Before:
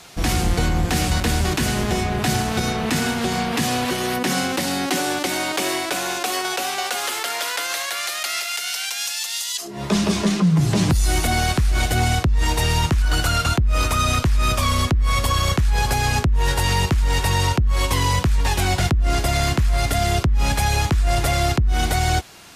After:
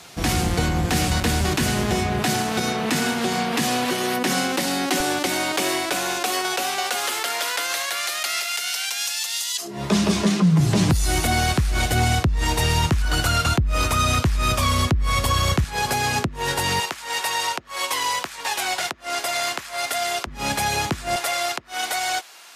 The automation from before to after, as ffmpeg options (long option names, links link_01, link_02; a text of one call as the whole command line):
ffmpeg -i in.wav -af "asetnsamples=nb_out_samples=441:pad=0,asendcmd='2.22 highpass f 170;5 highpass f 56;15.64 highpass f 160;16.8 highpass f 650;20.27 highpass f 180;21.16 highpass f 700',highpass=66" out.wav